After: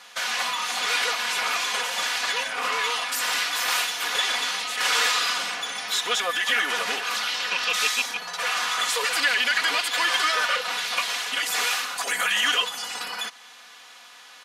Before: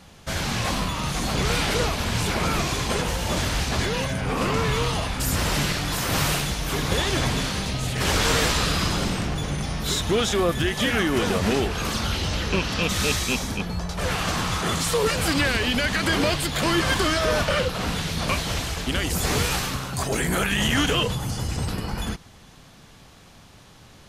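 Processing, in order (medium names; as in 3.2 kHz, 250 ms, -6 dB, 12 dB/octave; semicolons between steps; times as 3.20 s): high-pass 1.2 kHz 12 dB/octave; treble shelf 4.5 kHz -7 dB; comb 4.1 ms, depth 71%; time stretch by phase-locked vocoder 0.6×; in parallel at -0.5 dB: compression, threshold -41 dBFS, peak gain reduction 17.5 dB; on the sum: trim +3.5 dB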